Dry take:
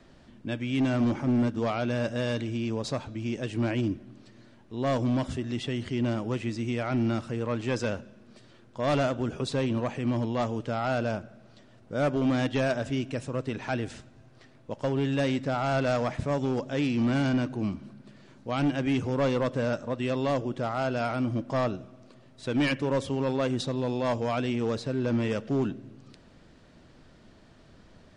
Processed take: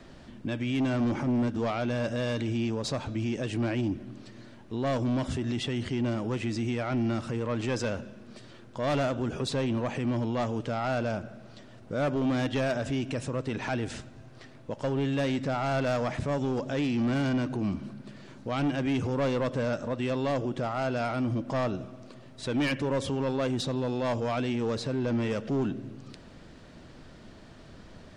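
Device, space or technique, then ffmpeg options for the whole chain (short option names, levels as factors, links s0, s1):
soft clipper into limiter: -af "asoftclip=type=tanh:threshold=0.0841,alimiter=level_in=1.68:limit=0.0631:level=0:latency=1:release=98,volume=0.596,volume=1.88"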